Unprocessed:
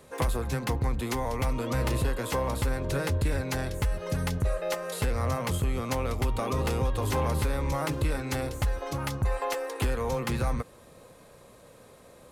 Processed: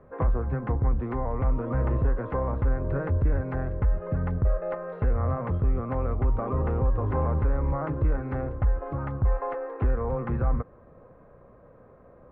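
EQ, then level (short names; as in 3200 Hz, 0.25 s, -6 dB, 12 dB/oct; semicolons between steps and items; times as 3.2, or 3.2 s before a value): LPF 1500 Hz 24 dB/oct; low shelf 71 Hz +7.5 dB; notch 890 Hz, Q 12; 0.0 dB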